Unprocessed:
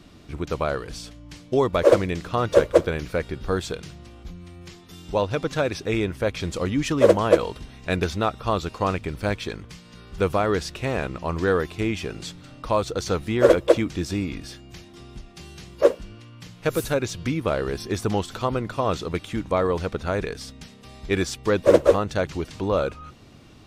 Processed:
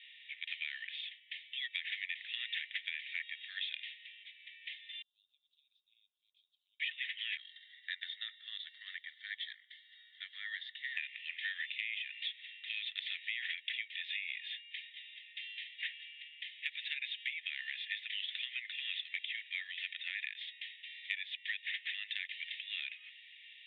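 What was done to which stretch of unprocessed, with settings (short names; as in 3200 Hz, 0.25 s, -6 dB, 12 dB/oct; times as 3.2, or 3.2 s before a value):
5.02–6.8 inverse Chebyshev band-stop 340–1900 Hz, stop band 80 dB
7.37–10.97 fixed phaser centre 680 Hz, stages 6
whole clip: Chebyshev band-pass 1800–3700 Hz, order 5; compressor 12:1, threshold -41 dBFS; gain +6 dB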